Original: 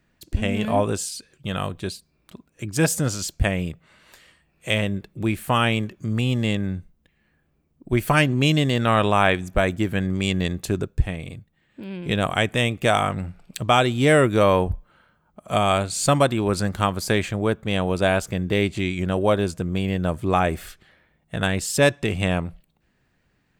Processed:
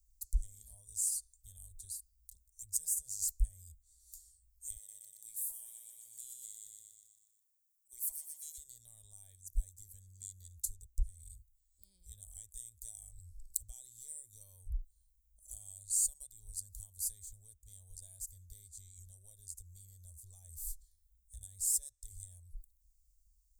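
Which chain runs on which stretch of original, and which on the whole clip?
0:04.76–0:08.58: high-pass filter 590 Hz + repeating echo 121 ms, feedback 54%, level −3 dB
whole clip: downward compressor 4 to 1, threshold −29 dBFS; dynamic equaliser 5,700 Hz, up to −6 dB, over −53 dBFS, Q 2; inverse Chebyshev band-stop filter 130–2,900 Hz, stop band 50 dB; level +5 dB

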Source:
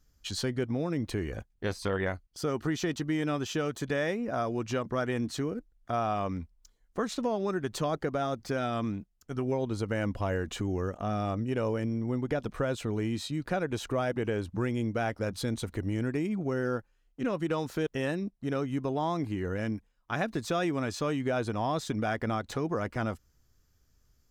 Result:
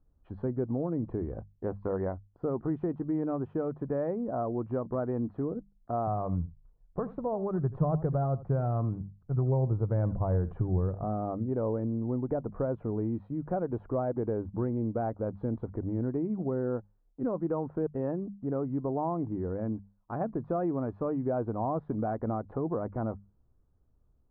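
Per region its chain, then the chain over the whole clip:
0:06.07–0:11.04: low shelf with overshoot 190 Hz +6.5 dB, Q 3 + single-tap delay 82 ms −17 dB
whole clip: low-pass filter 1,000 Hz 24 dB per octave; mains-hum notches 50/100/150/200 Hz

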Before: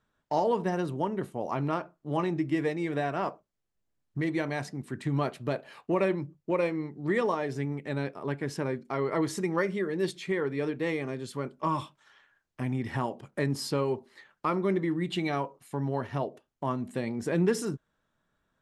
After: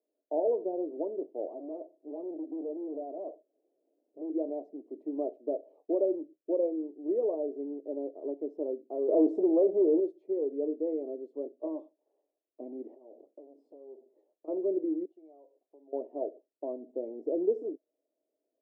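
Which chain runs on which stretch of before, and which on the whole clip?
0:01.47–0:04.30: low-pass filter 1,500 Hz + upward compression, threshold −43 dBFS + gain into a clipping stage and back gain 33 dB
0:09.08–0:10.00: high-shelf EQ 4,600 Hz −5 dB + leveller curve on the samples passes 3
0:12.94–0:14.48: downward compressor 8 to 1, threshold −41 dBFS + high-pass filter 88 Hz 24 dB per octave + saturating transformer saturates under 1,100 Hz
0:15.05–0:15.93: parametric band 130 Hz −12.5 dB 3 octaves + downward compressor 2.5 to 1, threshold −56 dBFS
whole clip: elliptic band-pass filter 290–650 Hz, stop band 50 dB; spectral tilt +1.5 dB per octave; level +2 dB

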